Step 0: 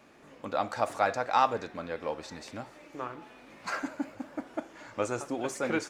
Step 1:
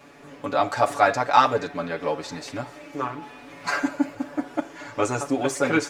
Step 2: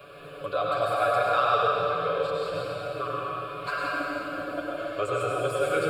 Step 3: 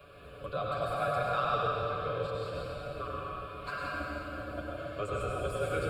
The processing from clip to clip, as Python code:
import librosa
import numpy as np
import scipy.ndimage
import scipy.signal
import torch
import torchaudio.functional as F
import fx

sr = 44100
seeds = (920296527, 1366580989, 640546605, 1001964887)

y1 = x + 0.94 * np.pad(x, (int(7.0 * sr / 1000.0), 0))[:len(x)]
y1 = y1 * librosa.db_to_amplitude(6.0)
y2 = fx.fixed_phaser(y1, sr, hz=1300.0, stages=8)
y2 = fx.rev_plate(y2, sr, seeds[0], rt60_s=2.6, hf_ratio=0.85, predelay_ms=80, drr_db=-5.0)
y2 = fx.band_squash(y2, sr, depth_pct=40)
y2 = y2 * librosa.db_to_amplitude(-5.5)
y3 = fx.octave_divider(y2, sr, octaves=2, level_db=3.0)
y3 = y3 * librosa.db_to_amplitude(-7.5)